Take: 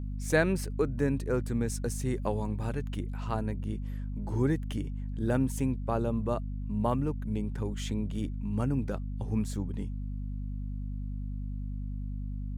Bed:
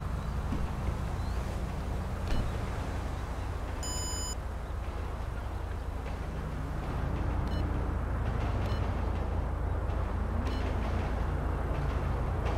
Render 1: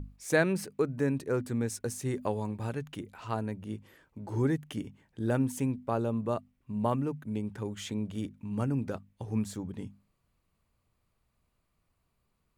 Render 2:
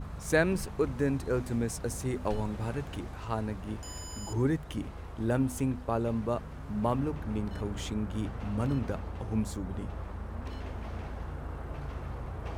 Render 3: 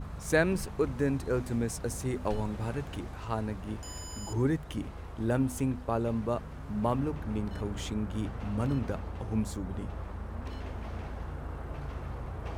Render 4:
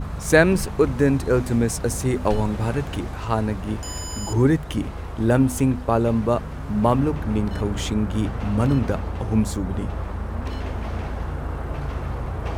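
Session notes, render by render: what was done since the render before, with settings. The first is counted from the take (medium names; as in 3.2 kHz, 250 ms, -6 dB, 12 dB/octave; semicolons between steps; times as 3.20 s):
hum notches 50/100/150/200/250 Hz
add bed -7 dB
no audible change
trim +10.5 dB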